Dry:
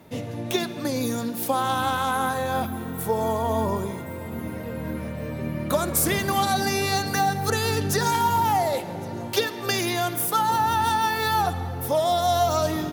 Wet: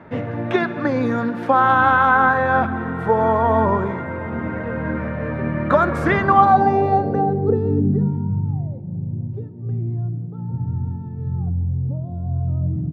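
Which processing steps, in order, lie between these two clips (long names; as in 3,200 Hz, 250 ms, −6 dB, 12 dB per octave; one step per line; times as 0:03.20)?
low-pass filter sweep 1,600 Hz → 140 Hz, 0:06.08–0:08.43
level +6 dB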